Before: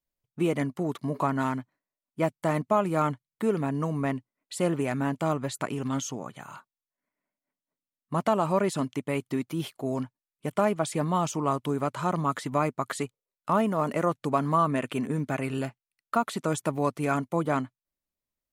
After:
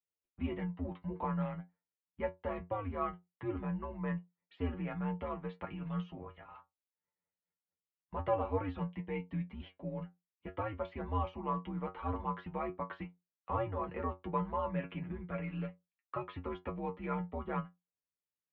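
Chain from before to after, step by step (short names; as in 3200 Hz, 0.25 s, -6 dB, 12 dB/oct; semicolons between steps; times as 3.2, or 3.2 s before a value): metallic resonator 90 Hz, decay 0.22 s, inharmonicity 0.002; mistuned SSB -96 Hz 160–3100 Hz; 8.9–9.85 notch 1300 Hz, Q 6.4; gain -2.5 dB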